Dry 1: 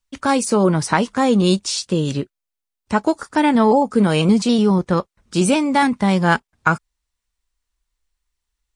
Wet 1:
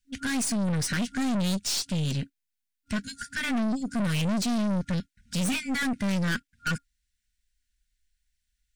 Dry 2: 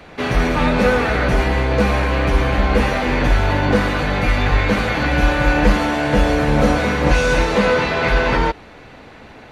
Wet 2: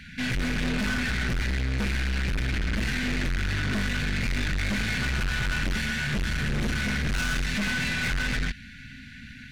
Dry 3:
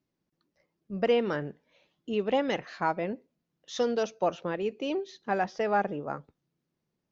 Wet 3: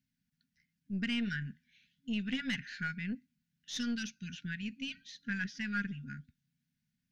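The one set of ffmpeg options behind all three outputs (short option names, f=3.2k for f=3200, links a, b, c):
-af "afftfilt=real='re*(1-between(b*sr/4096,270,1400))':imag='im*(1-between(b*sr/4096,270,1400))':win_size=4096:overlap=0.75,aeval=exprs='(tanh(20*val(0)+0.35)-tanh(0.35))/20':c=same,volume=1dB"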